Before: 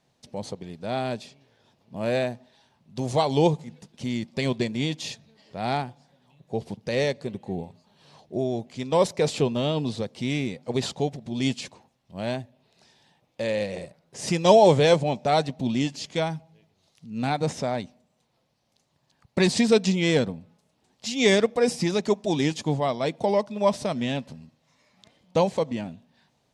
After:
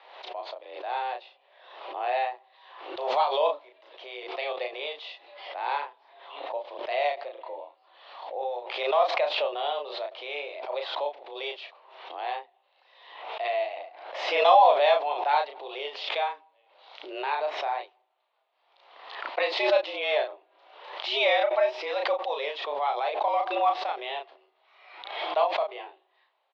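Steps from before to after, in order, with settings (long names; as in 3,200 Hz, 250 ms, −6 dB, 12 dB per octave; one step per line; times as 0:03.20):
double-tracking delay 34 ms −4 dB
single-sideband voice off tune +140 Hz 390–3,500 Hz
background raised ahead of every attack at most 59 dB per second
level −3 dB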